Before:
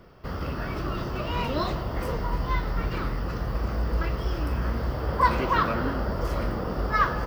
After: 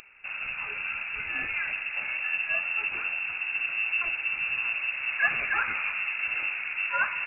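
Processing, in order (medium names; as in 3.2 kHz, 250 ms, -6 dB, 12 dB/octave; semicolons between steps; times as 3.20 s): upward compressor, threshold -47 dBFS; careless resampling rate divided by 3×, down none, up zero stuff; frequency inversion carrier 2.7 kHz; trim -4.5 dB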